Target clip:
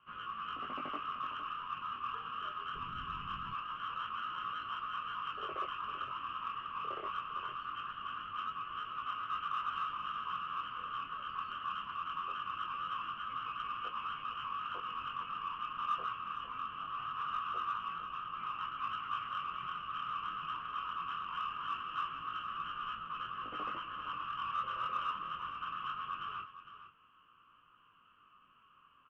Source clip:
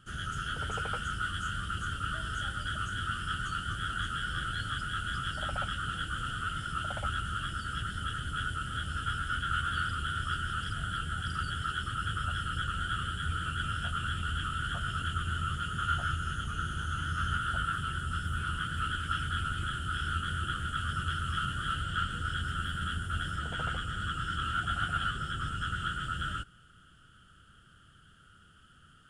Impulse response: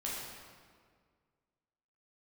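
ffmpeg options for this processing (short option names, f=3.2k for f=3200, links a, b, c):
-filter_complex "[0:a]highpass=f=330:t=q:w=0.5412,highpass=f=330:t=q:w=1.307,lowpass=f=3k:t=q:w=0.5176,lowpass=f=3k:t=q:w=0.7071,lowpass=f=3k:t=q:w=1.932,afreqshift=-190,flanger=delay=17.5:depth=7.7:speed=0.22,asplit=2[a][b];[b]asoftclip=type=tanh:threshold=-35dB,volume=-9dB[c];[a][c]amix=inputs=2:normalize=0,aecho=1:1:458:0.251,asplit=3[d][e][f];[d]afade=t=out:st=2.74:d=0.02[g];[e]asubboost=boost=7.5:cutoff=240,afade=t=in:st=2.74:d=0.02,afade=t=out:st=3.53:d=0.02[h];[f]afade=t=in:st=3.53:d=0.02[i];[g][h][i]amix=inputs=3:normalize=0,volume=-3dB"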